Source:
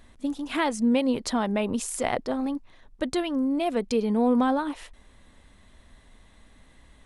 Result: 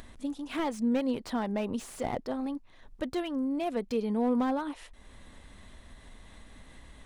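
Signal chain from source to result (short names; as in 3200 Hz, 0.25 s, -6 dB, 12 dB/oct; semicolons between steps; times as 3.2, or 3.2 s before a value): upward compressor, threshold -34 dBFS; slew limiter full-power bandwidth 73 Hz; gain -5.5 dB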